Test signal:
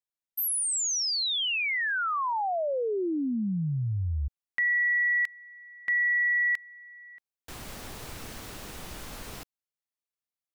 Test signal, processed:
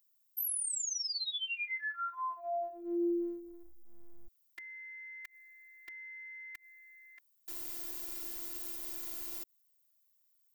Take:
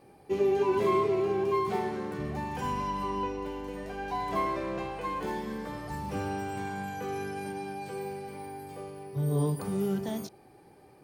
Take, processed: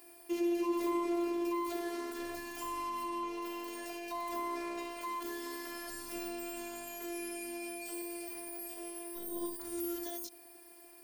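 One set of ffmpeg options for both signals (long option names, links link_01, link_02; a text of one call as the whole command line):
ffmpeg -i in.wav -filter_complex "[0:a]aemphasis=mode=production:type=riaa,acrossover=split=370[link_01][link_02];[link_02]acompressor=threshold=-37dB:ratio=5:attack=0.35:release=72:knee=1:detection=rms[link_03];[link_01][link_03]amix=inputs=2:normalize=0,afftfilt=real='hypot(re,im)*cos(PI*b)':imag='0':win_size=512:overlap=0.75,volume=3dB" out.wav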